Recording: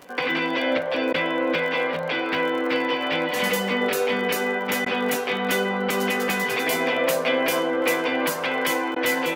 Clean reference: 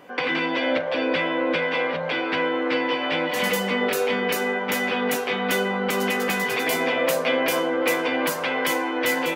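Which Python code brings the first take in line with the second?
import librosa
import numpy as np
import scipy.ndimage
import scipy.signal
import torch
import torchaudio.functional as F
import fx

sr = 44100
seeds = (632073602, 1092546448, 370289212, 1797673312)

y = fx.fix_declick_ar(x, sr, threshold=6.5)
y = fx.fix_interpolate(y, sr, at_s=(1.13, 4.85, 8.95), length_ms=10.0)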